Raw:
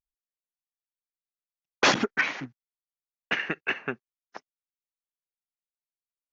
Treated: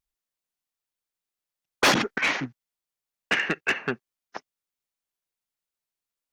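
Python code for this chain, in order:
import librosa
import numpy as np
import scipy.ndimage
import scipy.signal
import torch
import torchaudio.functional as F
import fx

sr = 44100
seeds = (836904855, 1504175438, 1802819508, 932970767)

y = fx.over_compress(x, sr, threshold_db=-28.0, ratio=-0.5, at=(1.95, 2.36), fade=0.02)
y = 10.0 ** (-21.0 / 20.0) * np.tanh(y / 10.0 ** (-21.0 / 20.0))
y = y * 10.0 ** (6.0 / 20.0)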